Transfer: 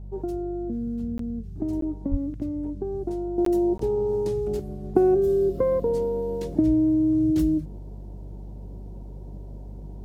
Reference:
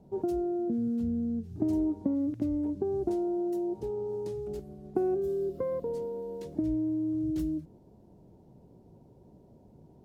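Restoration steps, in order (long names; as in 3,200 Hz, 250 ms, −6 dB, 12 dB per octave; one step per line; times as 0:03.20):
hum removal 49.1 Hz, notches 4
0:02.10–0:02.22: high-pass filter 140 Hz 24 dB per octave
repair the gap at 0:01.18/0:01.81/0:03.45/0:03.78, 13 ms
level 0 dB, from 0:03.38 −9.5 dB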